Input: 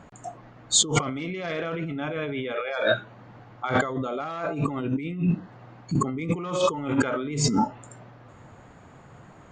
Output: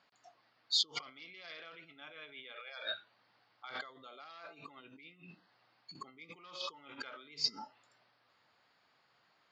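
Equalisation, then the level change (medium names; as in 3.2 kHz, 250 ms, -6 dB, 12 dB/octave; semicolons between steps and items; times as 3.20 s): band-pass filter 4.8 kHz, Q 6.1; distance through air 250 m; +10.0 dB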